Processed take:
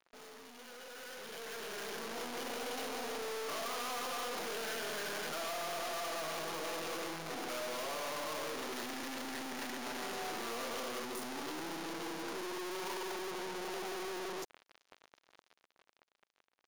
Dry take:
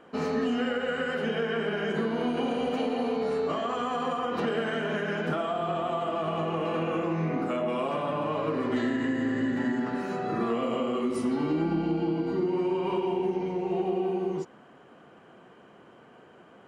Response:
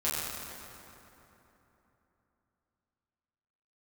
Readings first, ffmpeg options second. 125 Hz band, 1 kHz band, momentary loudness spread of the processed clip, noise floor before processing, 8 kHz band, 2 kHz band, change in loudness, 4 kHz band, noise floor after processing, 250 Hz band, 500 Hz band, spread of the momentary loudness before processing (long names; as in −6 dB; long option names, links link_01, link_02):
−22.5 dB, −9.0 dB, 6 LU, −54 dBFS, can't be measured, −6.5 dB, −11.0 dB, −1.5 dB, −81 dBFS, −18.0 dB, −13.5 dB, 2 LU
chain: -af "aeval=exprs='(tanh(251*val(0)+0.55)-tanh(0.55))/251':channel_layout=same,acrusher=bits=6:mix=0:aa=0.5,dynaudnorm=framelen=290:gausssize=11:maxgain=13dB,bass=frequency=250:gain=-14,treble=frequency=4000:gain=5,bandreject=frequency=7900:width=7.1,volume=7dB"